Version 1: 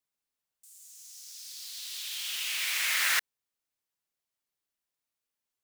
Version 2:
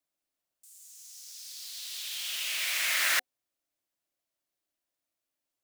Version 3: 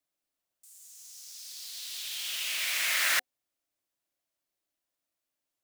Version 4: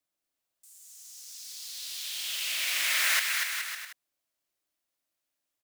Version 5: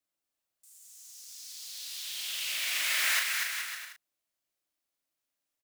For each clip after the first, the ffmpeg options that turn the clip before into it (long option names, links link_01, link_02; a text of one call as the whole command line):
ffmpeg -i in.wav -af "superequalizer=6b=2.24:8b=2.24" out.wav
ffmpeg -i in.wav -af "acrusher=bits=5:mode=log:mix=0:aa=0.000001" out.wav
ffmpeg -i in.wav -filter_complex "[0:a]acrossover=split=750[link_01][link_02];[link_01]alimiter=level_in=22dB:limit=-24dB:level=0:latency=1,volume=-22dB[link_03];[link_02]aecho=1:1:240|420|555|656.2|732.2:0.631|0.398|0.251|0.158|0.1[link_04];[link_03][link_04]amix=inputs=2:normalize=0" out.wav
ffmpeg -i in.wav -filter_complex "[0:a]asplit=2[link_01][link_02];[link_02]adelay=37,volume=-6dB[link_03];[link_01][link_03]amix=inputs=2:normalize=0,volume=-3dB" out.wav